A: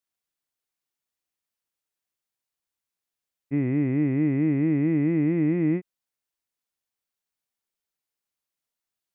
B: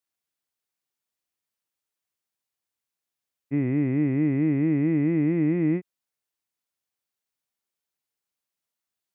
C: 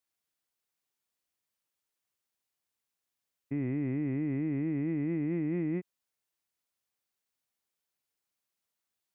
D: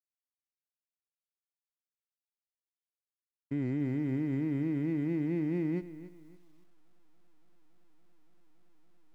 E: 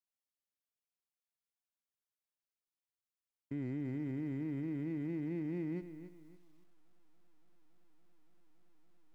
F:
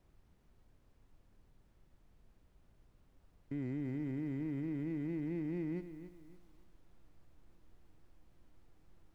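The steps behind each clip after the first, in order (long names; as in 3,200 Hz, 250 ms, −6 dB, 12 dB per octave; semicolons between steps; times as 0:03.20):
high-pass filter 55 Hz
brickwall limiter −25 dBFS, peak gain reduction 10 dB
slack as between gear wheels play −49 dBFS; feedback echo at a low word length 283 ms, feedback 35%, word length 10 bits, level −14.5 dB
brickwall limiter −28.5 dBFS, peak gain reduction 5 dB; level −3.5 dB
background noise brown −64 dBFS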